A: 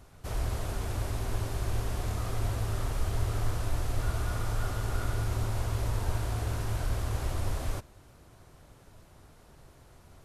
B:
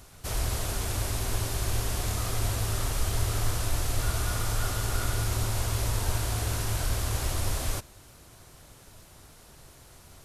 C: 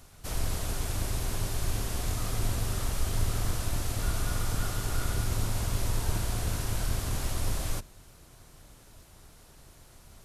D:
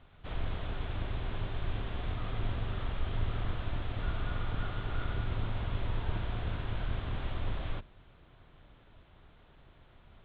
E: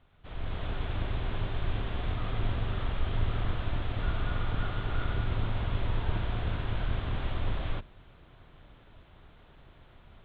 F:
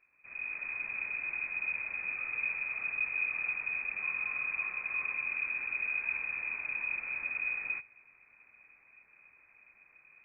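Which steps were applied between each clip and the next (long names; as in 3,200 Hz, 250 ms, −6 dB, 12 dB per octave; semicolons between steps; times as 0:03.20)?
high-shelf EQ 2,500 Hz +11 dB; level +1.5 dB
sub-octave generator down 2 octaves, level +2 dB; level −3.5 dB
elliptic low-pass filter 3,500 Hz, stop band 40 dB; level −3 dB
automatic gain control gain up to 9 dB; level −5.5 dB
voice inversion scrambler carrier 2,500 Hz; level −8.5 dB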